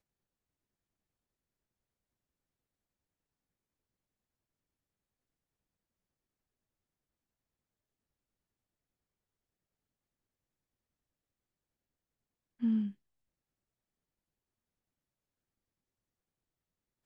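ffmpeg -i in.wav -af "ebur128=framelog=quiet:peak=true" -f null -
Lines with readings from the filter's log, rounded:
Integrated loudness:
  I:         -34.1 LUFS
  Threshold: -44.7 LUFS
Loudness range:
  LRA:         2.1 LU
  Threshold: -61.4 LUFS
  LRA low:   -43.2 LUFS
  LRA high:  -41.0 LUFS
True peak:
  Peak:      -24.1 dBFS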